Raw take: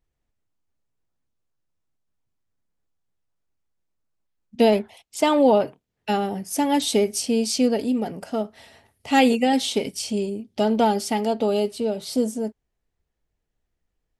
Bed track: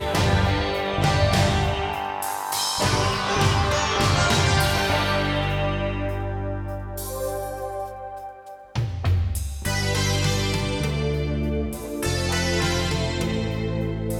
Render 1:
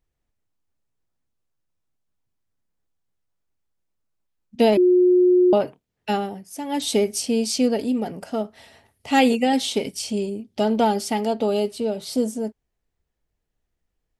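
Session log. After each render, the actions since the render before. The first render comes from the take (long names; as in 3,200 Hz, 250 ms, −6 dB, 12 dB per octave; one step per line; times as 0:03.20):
0:04.77–0:05.53: beep over 361 Hz −12 dBFS
0:06.14–0:06.92: duck −9.5 dB, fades 0.28 s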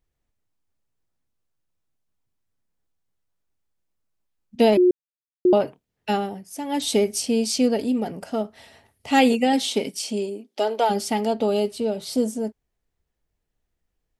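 0:04.91–0:05.45: silence
0:09.56–0:10.89: high-pass filter 110 Hz → 450 Hz 24 dB per octave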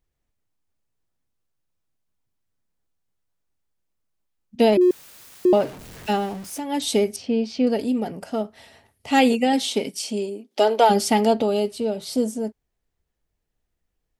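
0:04.81–0:06.60: converter with a step at zero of −35 dBFS
0:07.16–0:07.67: high-frequency loss of the air 260 metres
0:10.51–0:11.42: clip gain +5 dB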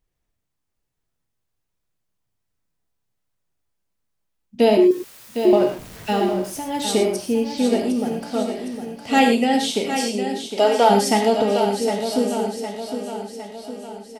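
repeating echo 759 ms, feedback 53%, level −8.5 dB
reverb whose tail is shaped and stops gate 140 ms flat, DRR 3 dB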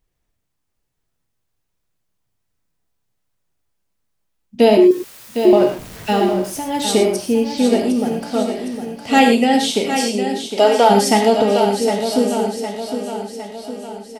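level +4 dB
brickwall limiter −2 dBFS, peak gain reduction 2 dB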